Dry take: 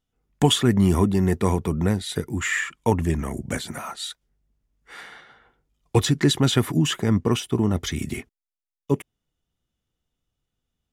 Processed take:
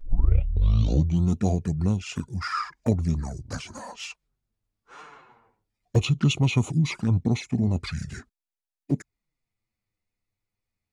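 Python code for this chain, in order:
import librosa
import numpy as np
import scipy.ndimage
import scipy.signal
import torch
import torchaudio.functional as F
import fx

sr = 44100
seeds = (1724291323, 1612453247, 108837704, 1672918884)

y = fx.tape_start_head(x, sr, length_s=1.3)
y = fx.formant_shift(y, sr, semitones=-6)
y = fx.env_flanger(y, sr, rest_ms=9.7, full_db=-18.0)
y = y * librosa.db_to_amplitude(-1.5)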